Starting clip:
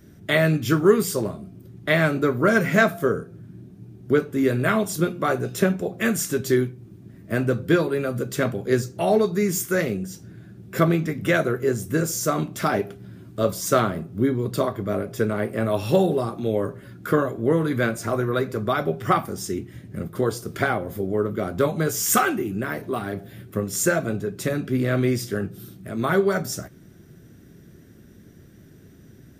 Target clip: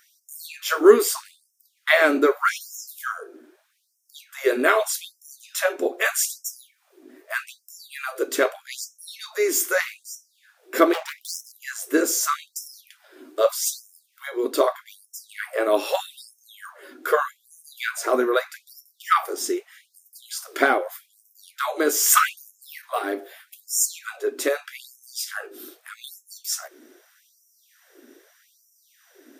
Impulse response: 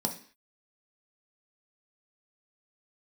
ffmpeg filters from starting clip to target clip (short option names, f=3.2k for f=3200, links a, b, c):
-filter_complex "[0:a]asettb=1/sr,asplit=3[a][b][c];[a]atrim=end=10.934[d];[b]atrim=start=10.93:end=11.52,asetpts=PTS-STARTPTS,afade=t=in:d=0.004:c=qsin,afade=t=out:st=0.586:d=0.004:c=qsin,aeval=exprs='0.0562*(abs(mod(val(0)/0.0562+3,4)-2)-1)':c=same[e];[c]atrim=start=11.516[f];[d][e]acrossfade=d=0.004:c1=hsin:c2=qsin[g];[g][f]acrossfade=d=0.004:c1=qsin:c2=hsin,afftfilt=real='re*gte(b*sr/1024,240*pow(5300/240,0.5+0.5*sin(2*PI*0.81*pts/sr)))':imag='im*gte(b*sr/1024,240*pow(5300/240,0.5+0.5*sin(2*PI*0.81*pts/sr)))':win_size=1024:overlap=0.75,volume=4.5dB"